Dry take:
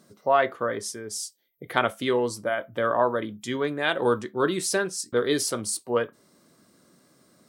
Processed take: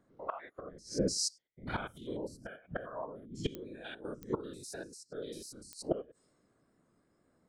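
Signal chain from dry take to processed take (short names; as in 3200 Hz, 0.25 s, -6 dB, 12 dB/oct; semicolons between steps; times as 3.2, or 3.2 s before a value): stepped spectrum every 0.1 s; spectral noise reduction 19 dB; low-pass opened by the level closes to 2000 Hz, open at -26 dBFS; 0.65–2.75 low shelf 200 Hz +9 dB; flipped gate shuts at -28 dBFS, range -26 dB; whisperiser; pops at 3.55/4.23/5.73, -36 dBFS; gain +9 dB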